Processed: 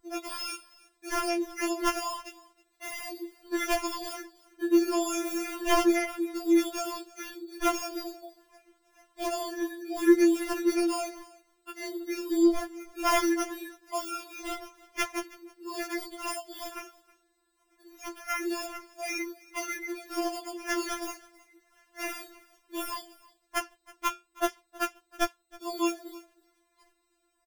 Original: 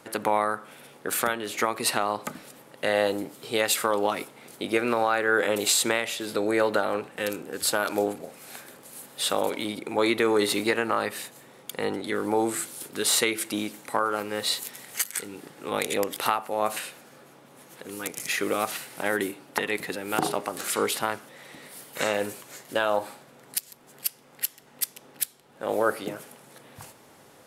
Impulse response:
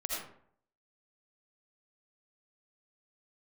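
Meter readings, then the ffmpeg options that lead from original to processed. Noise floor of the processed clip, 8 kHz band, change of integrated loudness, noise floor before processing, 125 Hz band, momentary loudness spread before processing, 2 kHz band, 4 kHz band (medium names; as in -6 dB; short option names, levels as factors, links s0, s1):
-74 dBFS, -8.5 dB, -3.5 dB, -54 dBFS, under -20 dB, 17 LU, -6.5 dB, -8.0 dB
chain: -filter_complex "[0:a]afftdn=nr=20:nf=-34,highshelf=f=9500:g=9.5,bandreject=f=450:w=12,aecho=1:1:6.1:0.99,bandreject=f=95.79:t=h:w=4,bandreject=f=191.58:t=h:w=4,bandreject=f=287.37:t=h:w=4,bandreject=f=383.16:t=h:w=4,bandreject=f=478.95:t=h:w=4,bandreject=f=574.74:t=h:w=4,bandreject=f=670.53:t=h:w=4,bandreject=f=766.32:t=h:w=4,adynamicequalizer=threshold=0.0141:dfrequency=4200:dqfactor=1.2:tfrequency=4200:tqfactor=1.2:attack=5:release=100:ratio=0.375:range=2:mode=cutabove:tftype=bell,aeval=exprs='val(0)+0.00562*(sin(2*PI*50*n/s)+sin(2*PI*2*50*n/s)/2+sin(2*PI*3*50*n/s)/3+sin(2*PI*4*50*n/s)/4+sin(2*PI*5*50*n/s)/5)':c=same,acrossover=split=3800[s0][s1];[s0]asoftclip=type=tanh:threshold=0.188[s2];[s2][s1]amix=inputs=2:normalize=0,acrusher=samples=11:mix=1:aa=0.000001,flanger=delay=9.6:depth=8.8:regen=-59:speed=0.31:shape=sinusoidal,aecho=1:1:319:0.075,afftfilt=real='re*4*eq(mod(b,16),0)':imag='im*4*eq(mod(b,16),0)':win_size=2048:overlap=0.75"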